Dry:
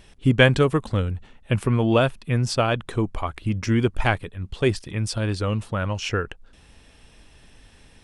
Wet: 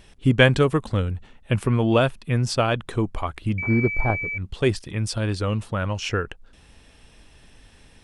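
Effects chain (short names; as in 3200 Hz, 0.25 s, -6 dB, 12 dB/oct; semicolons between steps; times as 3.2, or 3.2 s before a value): 3.58–4.38 pulse-width modulation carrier 2300 Hz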